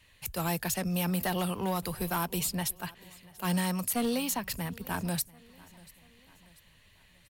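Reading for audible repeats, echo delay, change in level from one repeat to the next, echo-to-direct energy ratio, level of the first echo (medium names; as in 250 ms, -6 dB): 2, 688 ms, -6.0 dB, -22.0 dB, -23.0 dB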